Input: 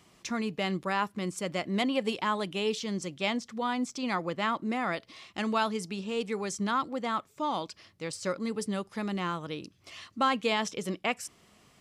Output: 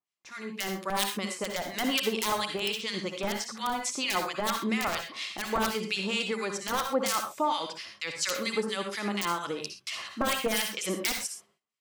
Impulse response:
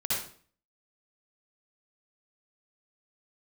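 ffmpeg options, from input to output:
-filter_complex "[0:a]highpass=f=820:p=1,agate=range=-29dB:threshold=-59dB:ratio=16:detection=peak,aeval=exprs='(mod(13.3*val(0)+1,2)-1)/13.3':c=same,dynaudnorm=f=110:g=17:m=13.5dB,alimiter=limit=-17dB:level=0:latency=1:release=155,acrossover=split=1400[a][b];[a]aeval=exprs='val(0)*(1-1/2+1/2*cos(2*PI*4.3*n/s))':c=same[c];[b]aeval=exprs='val(0)*(1-1/2-1/2*cos(2*PI*4.3*n/s))':c=same[d];[c][d]amix=inputs=2:normalize=0,asplit=2[e][f];[1:a]atrim=start_sample=2205,atrim=end_sample=6174[g];[f][g]afir=irnorm=-1:irlink=0,volume=-8.5dB[h];[e][h]amix=inputs=2:normalize=0"

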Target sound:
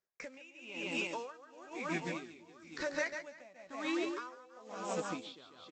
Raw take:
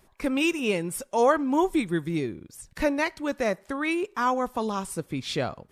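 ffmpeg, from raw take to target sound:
-filter_complex "[0:a]afftfilt=real='re*pow(10,11/40*sin(2*PI*(0.57*log(max(b,1)*sr/1024/100)/log(2)-(0.69)*(pts-256)/sr)))':imag='im*pow(10,11/40*sin(2*PI*(0.57*log(max(b,1)*sr/1024/100)/log(2)-(0.69)*(pts-256)/sr)))':win_size=1024:overlap=0.75,aresample=16000,acrusher=bits=5:mode=log:mix=0:aa=0.000001,aresample=44100,highpass=f=500:p=1,asplit=2[a][b];[b]adelay=12,volume=-10dB[c];[a][c]amix=inputs=2:normalize=0,asplit=2[d][e];[e]aecho=0:1:140|322|558.6|866.2|1266:0.631|0.398|0.251|0.158|0.1[f];[d][f]amix=inputs=2:normalize=0,acompressor=threshold=-34dB:ratio=6,agate=range=-32dB:threshold=-51dB:ratio=16:detection=peak,aeval=exprs='val(0)*pow(10,-22*(0.5-0.5*cos(2*PI*1*n/s))/20)':c=same,volume=2dB"

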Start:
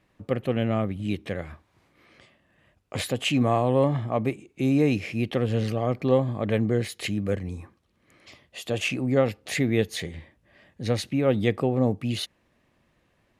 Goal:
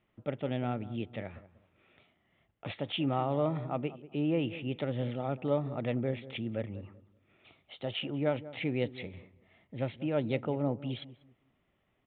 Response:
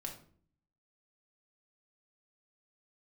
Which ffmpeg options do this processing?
-filter_complex "[0:a]asetrate=48951,aresample=44100,asplit=2[a][b];[b]adelay=191,lowpass=f=1k:p=1,volume=-15dB,asplit=2[c][d];[d]adelay=191,lowpass=f=1k:p=1,volume=0.27,asplit=2[e][f];[f]adelay=191,lowpass=f=1k:p=1,volume=0.27[g];[c][e][g]amix=inputs=3:normalize=0[h];[a][h]amix=inputs=2:normalize=0,aresample=8000,aresample=44100,volume=-8.5dB"

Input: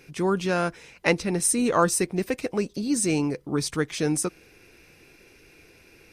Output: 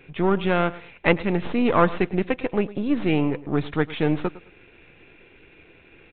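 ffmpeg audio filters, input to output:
-af "aeval=exprs='if(lt(val(0),0),0.447*val(0),val(0))':c=same,aecho=1:1:107|214:0.126|0.0315,aresample=8000,aresample=44100,volume=5dB"

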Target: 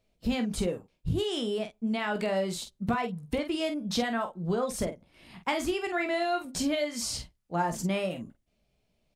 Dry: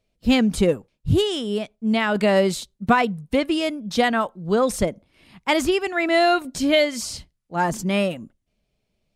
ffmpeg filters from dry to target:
-filter_complex "[0:a]equalizer=f=740:t=o:w=0.77:g=2.5,acompressor=threshold=-26dB:ratio=6,asplit=2[a][b];[b]aecho=0:1:17|47:0.355|0.376[c];[a][c]amix=inputs=2:normalize=0,volume=-1.5dB"

